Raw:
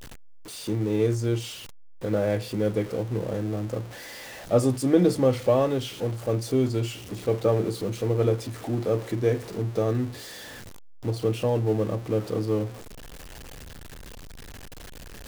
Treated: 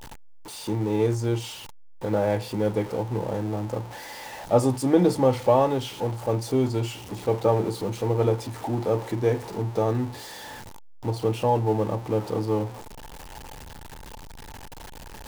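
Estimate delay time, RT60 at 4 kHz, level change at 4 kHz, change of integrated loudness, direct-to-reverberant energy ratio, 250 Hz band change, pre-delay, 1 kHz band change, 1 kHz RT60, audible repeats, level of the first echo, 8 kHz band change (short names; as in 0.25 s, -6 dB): none, none, 0.0 dB, +1.0 dB, none, 0.0 dB, none, +7.5 dB, none, none, none, 0.0 dB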